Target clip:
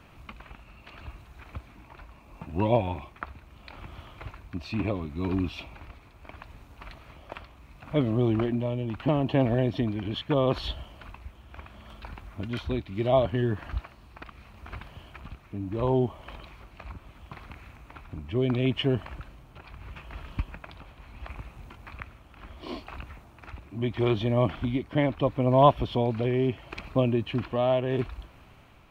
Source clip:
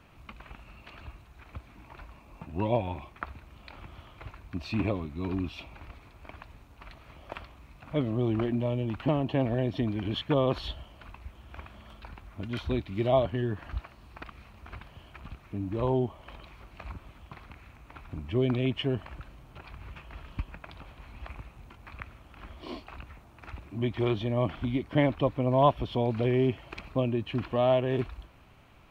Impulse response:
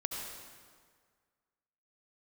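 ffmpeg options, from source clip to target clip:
-af "tremolo=f=0.74:d=0.4,volume=1.58"

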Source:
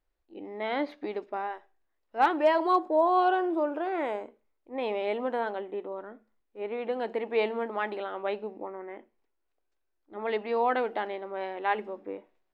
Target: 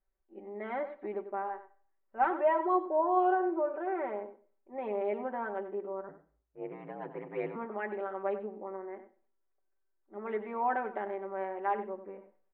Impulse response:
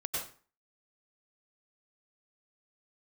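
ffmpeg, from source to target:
-filter_complex "[0:a]lowpass=f=2000:w=0.5412,lowpass=f=2000:w=1.3066,aecho=1:1:5.2:0.82,asettb=1/sr,asplit=3[s0][s1][s2];[s0]atrim=end=6.084[s3];[s1]atrim=start=6.08:end=7.56,asetpts=PTS-STARTPTS,afade=t=in:d=0.004:c=qsin,afade=t=out:st=1.476:d=0.004:c=qsin,aeval=exprs='val(0)*sin(2*PI*57*n/s)':c=same[s4];[s2]atrim=start=7.556[s5];[s3][s4]acrossfade=d=0.004:c1=hsin:c2=qsin[s6];[s6][s5]acrossfade=d=0.004:c1=qsin:c2=hsin,asplit=2[s7][s8];[s8]adelay=93.29,volume=0.251,highshelf=f=4000:g=-2.1[s9];[s7][s9]amix=inputs=2:normalize=0,asplit=2[s10][s11];[1:a]atrim=start_sample=2205,asetrate=42777,aresample=44100[s12];[s11][s12]afir=irnorm=-1:irlink=0,volume=0.0631[s13];[s10][s13]amix=inputs=2:normalize=0,volume=0.447"

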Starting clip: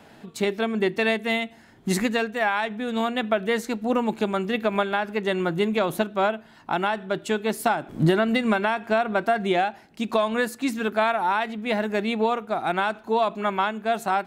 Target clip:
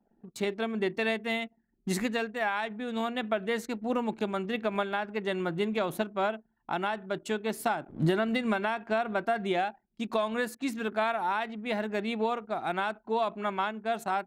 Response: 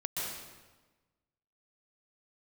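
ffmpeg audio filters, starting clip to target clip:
-af "anlmdn=0.251,volume=0.473"

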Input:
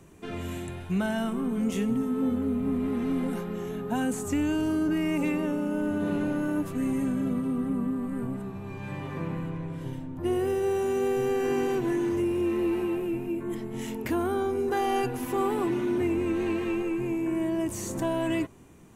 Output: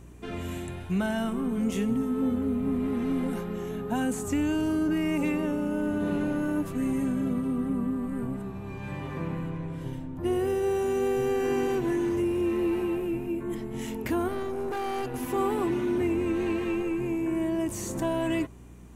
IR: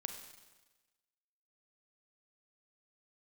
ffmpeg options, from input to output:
-filter_complex "[0:a]aeval=exprs='val(0)+0.00398*(sin(2*PI*60*n/s)+sin(2*PI*2*60*n/s)/2+sin(2*PI*3*60*n/s)/3+sin(2*PI*4*60*n/s)/4+sin(2*PI*5*60*n/s)/5)':c=same,asettb=1/sr,asplit=3[s0][s1][s2];[s0]atrim=end=14.284[s3];[s1]atrim=start=14.28:end=15.14,asetpts=PTS-STARTPTS,afade=t=in:d=0.004:c=qsin,afade=t=out:st=0.856:d=0.004:c=qsin,aeval=exprs='(tanh(22.4*val(0)+0.6)-tanh(0.6))/22.4':c=same[s4];[s2]atrim=start=15.136[s5];[s3][s4]acrossfade=d=0.004:c1=hsin:c2=qsin[s6];[s6][s5]acrossfade=d=0.004:c1=qsin:c2=hsin"

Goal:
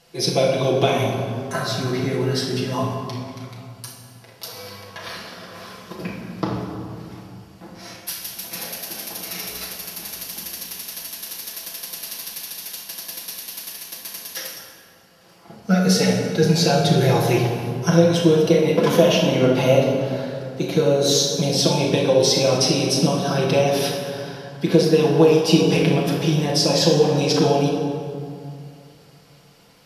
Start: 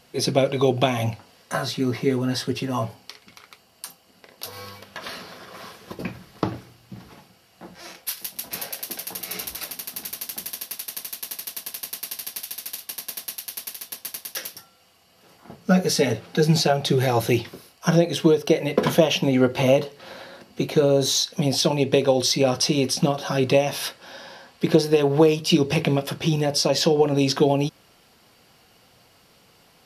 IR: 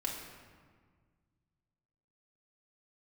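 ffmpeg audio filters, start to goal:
-filter_complex "[0:a]equalizer=f=5400:w=1.5:g=3[s0];[1:a]atrim=start_sample=2205,asetrate=28665,aresample=44100[s1];[s0][s1]afir=irnorm=-1:irlink=0,volume=0.668"

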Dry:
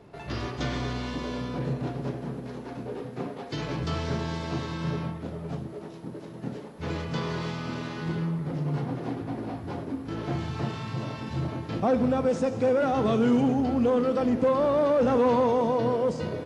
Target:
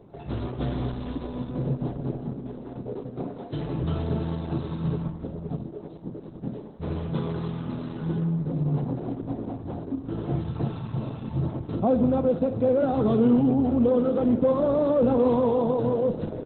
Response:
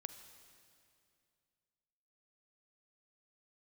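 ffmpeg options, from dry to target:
-af "lowpass=9600,equalizer=f=2100:w=0.75:g=-14,volume=1.58" -ar 48000 -c:a libopus -b:a 8k

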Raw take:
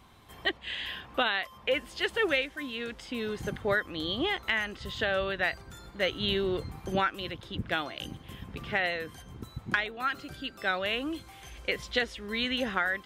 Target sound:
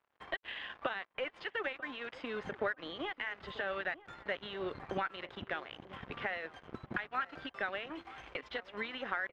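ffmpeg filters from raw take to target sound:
-filter_complex "[0:a]acrossover=split=250[s0][s1];[s1]crystalizer=i=6:c=0[s2];[s0][s2]amix=inputs=2:normalize=0,bandreject=f=334.9:t=h:w=4,bandreject=f=669.8:t=h:w=4,bandreject=f=1004.7:t=h:w=4,bandreject=f=1339.6:t=h:w=4,bandreject=f=1674.5:t=h:w=4,bandreject=f=2009.4:t=h:w=4,bandreject=f=2344.3:t=h:w=4,bandreject=f=2679.2:t=h:w=4,bandreject=f=3014.1:t=h:w=4,bandreject=f=3349:t=h:w=4,bandreject=f=3683.9:t=h:w=4,acompressor=threshold=0.02:ratio=4,aeval=exprs='sgn(val(0))*max(abs(val(0))-0.00668,0)':c=same,atempo=1.4,asplit=2[s3][s4];[s4]highpass=f=720:p=1,volume=5.62,asoftclip=type=tanh:threshold=0.168[s5];[s3][s5]amix=inputs=2:normalize=0,lowpass=f=1400:p=1,volume=0.501,lowpass=1900,asplit=2[s6][s7];[s7]adelay=941,lowpass=f=990:p=1,volume=0.158,asplit=2[s8][s9];[s9]adelay=941,lowpass=f=990:p=1,volume=0.18[s10];[s6][s8][s10]amix=inputs=3:normalize=0"

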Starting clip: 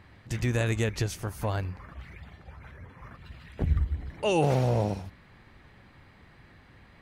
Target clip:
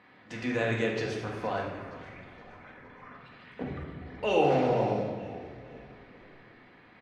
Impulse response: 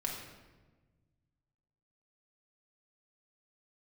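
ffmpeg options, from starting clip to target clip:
-filter_complex "[0:a]highpass=270,lowpass=3600,asplit=5[s0][s1][s2][s3][s4];[s1]adelay=468,afreqshift=-35,volume=0.141[s5];[s2]adelay=936,afreqshift=-70,volume=0.0638[s6];[s3]adelay=1404,afreqshift=-105,volume=0.0285[s7];[s4]adelay=1872,afreqshift=-140,volume=0.0129[s8];[s0][s5][s6][s7][s8]amix=inputs=5:normalize=0[s9];[1:a]atrim=start_sample=2205[s10];[s9][s10]afir=irnorm=-1:irlink=0"

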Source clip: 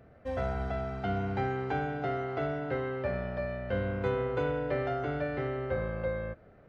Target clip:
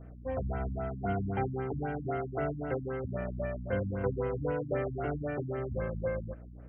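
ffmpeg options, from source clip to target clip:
-af "aeval=exprs='val(0)+0.00447*(sin(2*PI*60*n/s)+sin(2*PI*2*60*n/s)/2+sin(2*PI*3*60*n/s)/3+sin(2*PI*4*60*n/s)/4+sin(2*PI*5*60*n/s)/5)':c=same,afftfilt=real='re*lt(b*sr/1024,260*pow(3300/260,0.5+0.5*sin(2*PI*3.8*pts/sr)))':imag='im*lt(b*sr/1024,260*pow(3300/260,0.5+0.5*sin(2*PI*3.8*pts/sr)))':win_size=1024:overlap=0.75"

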